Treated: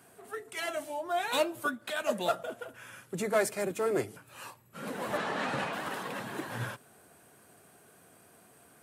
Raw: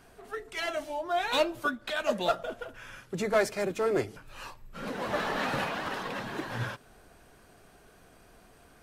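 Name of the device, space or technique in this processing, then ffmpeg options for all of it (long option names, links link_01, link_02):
budget condenser microphone: -filter_complex "[0:a]highpass=frequency=100:width=0.5412,highpass=frequency=100:width=1.3066,highshelf=frequency=6900:width_type=q:width=1.5:gain=7,asettb=1/sr,asplit=3[link_01][link_02][link_03];[link_01]atrim=end=5.174[link_04];[link_02]atrim=start=5.17:end=5.73,asetpts=PTS-STARTPTS,afade=type=in:duration=0.004:curve=qsin,afade=type=out:start_time=0.556:duration=0.004:curve=qsin,lowpass=6700[link_05];[link_03]atrim=start=5.726[link_06];[link_04][link_05]acrossfade=duration=0.004:curve1=hsin:curve2=qsin[link_07];[link_07][link_06]acrossfade=duration=0.004:curve1=qsin:curve2=hsin,volume=-2dB"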